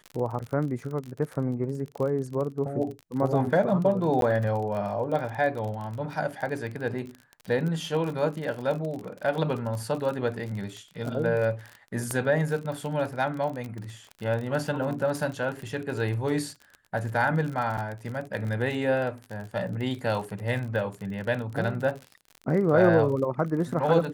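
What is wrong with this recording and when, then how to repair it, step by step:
surface crackle 41 per second −32 dBFS
0:04.21–0:04.22: drop-out 12 ms
0:12.11: click −15 dBFS
0:17.77–0:17.78: drop-out 7.6 ms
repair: click removal
repair the gap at 0:04.21, 12 ms
repair the gap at 0:17.77, 7.6 ms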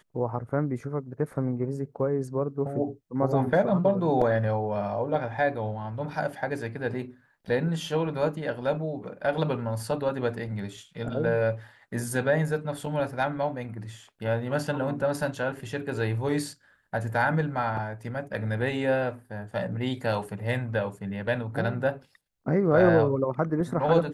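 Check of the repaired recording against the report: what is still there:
none of them is left

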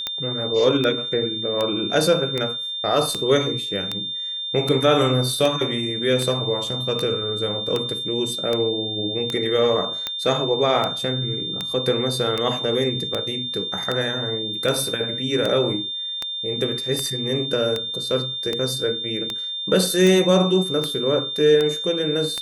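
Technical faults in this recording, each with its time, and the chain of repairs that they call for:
scratch tick 78 rpm −10 dBFS
whistle 3,600 Hz −26 dBFS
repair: click removal
notch filter 3,600 Hz, Q 30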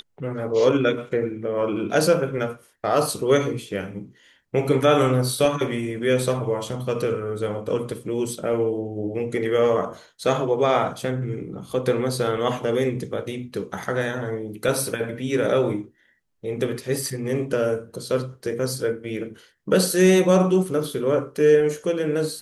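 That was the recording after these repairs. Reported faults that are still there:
none of them is left

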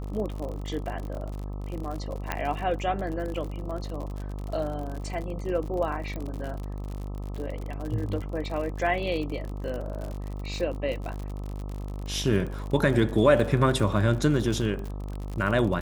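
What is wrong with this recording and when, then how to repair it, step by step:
mains buzz 50 Hz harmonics 26 −34 dBFS
surface crackle 58 per second −33 dBFS
0:02.32: click −13 dBFS
0:06.16: click −23 dBFS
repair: click removal
hum removal 50 Hz, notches 26

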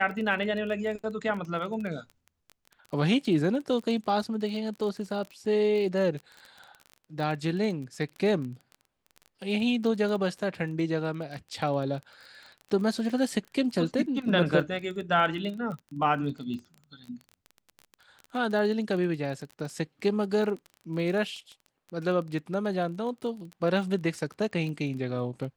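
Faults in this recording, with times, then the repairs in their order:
surface crackle 22 per second −35 dBFS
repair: click removal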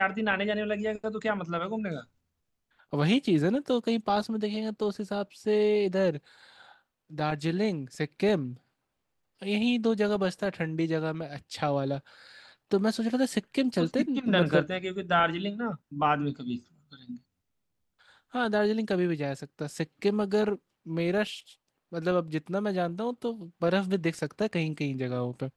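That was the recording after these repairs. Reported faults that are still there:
none of them is left

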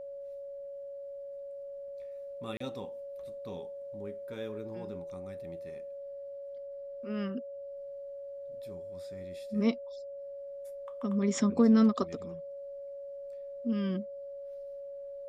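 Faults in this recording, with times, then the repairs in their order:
whistle 560 Hz −40 dBFS
0:02.57–0:02.60: drop-out 34 ms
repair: notch filter 560 Hz, Q 30
repair the gap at 0:02.57, 34 ms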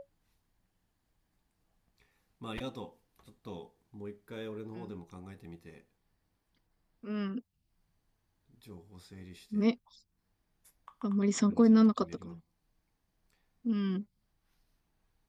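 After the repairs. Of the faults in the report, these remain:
none of them is left

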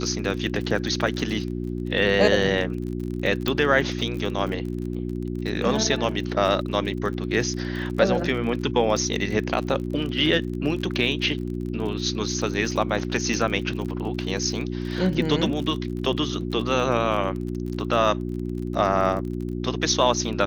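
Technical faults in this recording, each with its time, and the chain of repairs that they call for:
surface crackle 37 per second −31 dBFS
mains hum 60 Hz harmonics 6 −29 dBFS
0:03.48: click −10 dBFS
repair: click removal
hum removal 60 Hz, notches 6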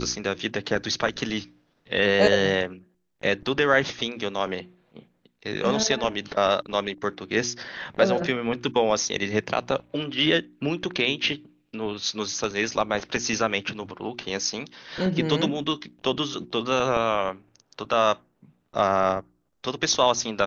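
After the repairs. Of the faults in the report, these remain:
0:03.48: click

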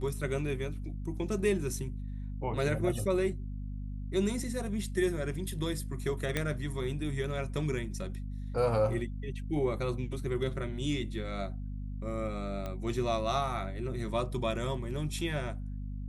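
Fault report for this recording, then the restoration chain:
mains hum 50 Hz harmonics 5 −38 dBFS
0:06.37: click −15 dBFS
0:12.66: click −24 dBFS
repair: click removal
hum removal 50 Hz, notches 5

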